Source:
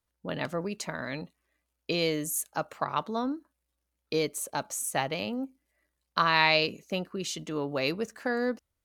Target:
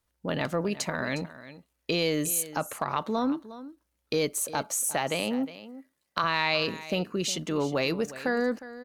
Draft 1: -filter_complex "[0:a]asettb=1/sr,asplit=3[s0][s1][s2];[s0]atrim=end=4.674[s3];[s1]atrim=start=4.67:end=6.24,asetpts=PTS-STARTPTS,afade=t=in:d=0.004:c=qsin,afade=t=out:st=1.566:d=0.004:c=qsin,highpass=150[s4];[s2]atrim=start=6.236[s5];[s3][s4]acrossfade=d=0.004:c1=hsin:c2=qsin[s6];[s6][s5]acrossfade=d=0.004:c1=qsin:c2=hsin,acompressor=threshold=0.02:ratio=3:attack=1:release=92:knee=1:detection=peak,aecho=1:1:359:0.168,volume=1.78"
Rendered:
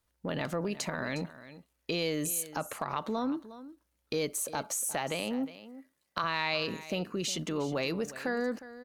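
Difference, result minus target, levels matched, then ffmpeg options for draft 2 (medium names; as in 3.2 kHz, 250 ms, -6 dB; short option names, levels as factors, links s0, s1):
compression: peak gain reduction +5 dB
-filter_complex "[0:a]asettb=1/sr,asplit=3[s0][s1][s2];[s0]atrim=end=4.674[s3];[s1]atrim=start=4.67:end=6.24,asetpts=PTS-STARTPTS,afade=t=in:d=0.004:c=qsin,afade=t=out:st=1.566:d=0.004:c=qsin,highpass=150[s4];[s2]atrim=start=6.236[s5];[s3][s4]acrossfade=d=0.004:c1=hsin:c2=qsin[s6];[s6][s5]acrossfade=d=0.004:c1=qsin:c2=hsin,acompressor=threshold=0.0473:ratio=3:attack=1:release=92:knee=1:detection=peak,aecho=1:1:359:0.168,volume=1.78"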